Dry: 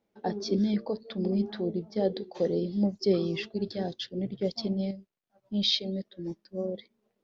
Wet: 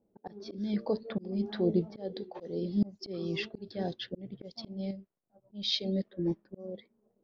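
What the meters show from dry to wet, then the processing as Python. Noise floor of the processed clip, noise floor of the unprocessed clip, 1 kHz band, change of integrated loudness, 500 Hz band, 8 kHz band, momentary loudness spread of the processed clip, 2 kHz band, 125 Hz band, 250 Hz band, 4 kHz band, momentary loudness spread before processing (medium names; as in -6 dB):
-76 dBFS, -79 dBFS, -6.0 dB, -4.0 dB, -5.5 dB, no reading, 14 LU, -1.5 dB, -3.5 dB, -4.0 dB, -5.0 dB, 10 LU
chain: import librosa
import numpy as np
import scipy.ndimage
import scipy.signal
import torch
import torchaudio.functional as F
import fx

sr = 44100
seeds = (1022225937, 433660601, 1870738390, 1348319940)

y = fx.env_lowpass(x, sr, base_hz=530.0, full_db=-25.0)
y = fx.auto_swell(y, sr, attack_ms=636.0)
y = y * librosa.db_to_amplitude(5.5)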